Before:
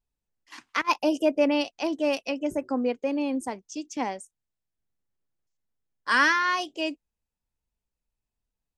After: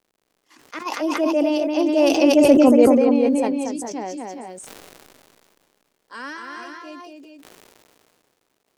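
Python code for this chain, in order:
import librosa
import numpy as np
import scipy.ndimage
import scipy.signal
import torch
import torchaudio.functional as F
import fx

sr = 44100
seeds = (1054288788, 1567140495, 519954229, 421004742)

y = fx.doppler_pass(x, sr, speed_mps=11, closest_m=3.1, pass_at_s=2.45)
y = fx.high_shelf(y, sr, hz=5500.0, db=10.5)
y = fx.dmg_crackle(y, sr, seeds[0], per_s=110.0, level_db=-58.0)
y = fx.peak_eq(y, sr, hz=390.0, db=11.5, octaves=2.4)
y = fx.echo_multitap(y, sr, ms=(234, 401, 418), db=(-5.0, -13.5, -7.0))
y = fx.sustainer(y, sr, db_per_s=24.0)
y = F.gain(torch.from_numpy(y), 4.0).numpy()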